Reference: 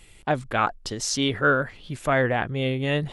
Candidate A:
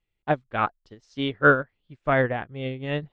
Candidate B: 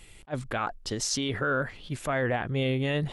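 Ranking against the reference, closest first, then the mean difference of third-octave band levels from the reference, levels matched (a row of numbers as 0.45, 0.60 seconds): B, A; 3.0, 9.5 decibels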